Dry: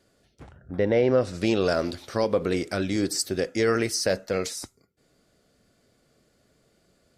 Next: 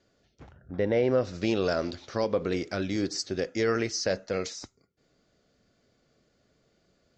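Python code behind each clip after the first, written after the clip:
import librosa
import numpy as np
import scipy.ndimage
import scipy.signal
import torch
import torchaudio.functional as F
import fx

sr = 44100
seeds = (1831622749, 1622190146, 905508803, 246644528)

y = scipy.signal.sosfilt(scipy.signal.butter(12, 7100.0, 'lowpass', fs=sr, output='sos'), x)
y = y * librosa.db_to_amplitude(-3.5)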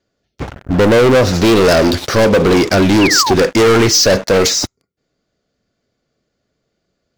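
y = fx.leveller(x, sr, passes=5)
y = fx.spec_paint(y, sr, seeds[0], shape='fall', start_s=3.01, length_s=0.33, low_hz=680.0, high_hz=3000.0, level_db=-25.0)
y = y * librosa.db_to_amplitude(8.0)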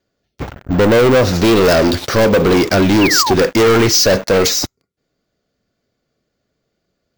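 y = np.repeat(x[::2], 2)[:len(x)]
y = y * librosa.db_to_amplitude(-1.0)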